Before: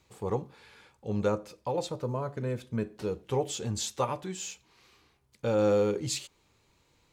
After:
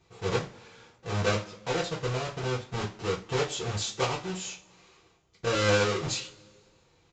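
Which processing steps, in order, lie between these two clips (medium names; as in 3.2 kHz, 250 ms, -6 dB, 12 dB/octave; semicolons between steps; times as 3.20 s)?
square wave that keeps the level; resampled via 16 kHz; two-slope reverb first 0.24 s, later 1.8 s, from -27 dB, DRR -4 dB; trim -6.5 dB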